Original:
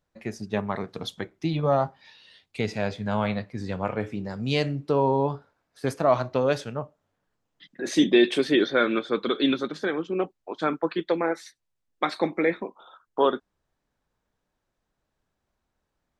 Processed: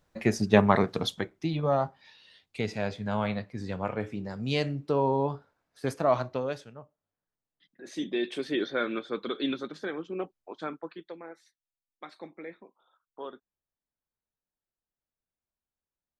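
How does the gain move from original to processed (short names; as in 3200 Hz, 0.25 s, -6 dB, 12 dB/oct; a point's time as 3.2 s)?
0.8 s +8 dB
1.48 s -3.5 dB
6.21 s -3.5 dB
6.75 s -15 dB
7.85 s -15 dB
8.66 s -7.5 dB
10.51 s -7.5 dB
11.17 s -19 dB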